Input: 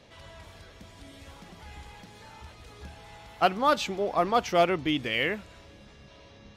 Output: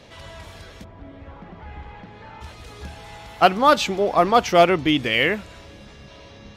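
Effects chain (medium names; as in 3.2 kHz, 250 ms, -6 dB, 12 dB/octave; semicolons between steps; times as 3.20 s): 0.83–2.40 s: low-pass 1.2 kHz -> 2.5 kHz 12 dB/octave; trim +8 dB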